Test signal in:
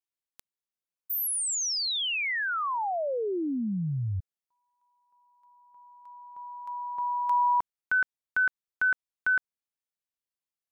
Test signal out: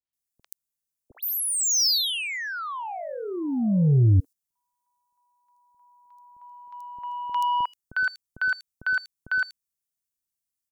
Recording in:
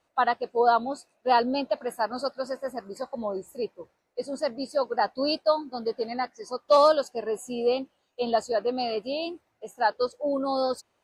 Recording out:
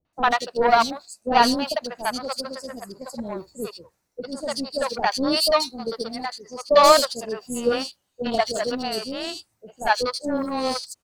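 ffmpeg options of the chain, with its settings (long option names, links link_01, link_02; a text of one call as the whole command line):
ffmpeg -i in.wav -filter_complex "[0:a]bass=frequency=250:gain=10,treble=frequency=4000:gain=13,acrossover=split=5100[link_01][link_02];[link_02]acompressor=threshold=-27dB:ratio=4:attack=1:release=60[link_03];[link_01][link_03]amix=inputs=2:normalize=0,aeval=exprs='0.422*(cos(1*acos(clip(val(0)/0.422,-1,1)))-cos(1*PI/2))+0.0422*(cos(7*acos(clip(val(0)/0.422,-1,1)))-cos(7*PI/2))':channel_layout=same,acrossover=split=560|3900[link_04][link_05][link_06];[link_05]adelay=50[link_07];[link_06]adelay=130[link_08];[link_04][link_07][link_08]amix=inputs=3:normalize=0,volume=6.5dB" out.wav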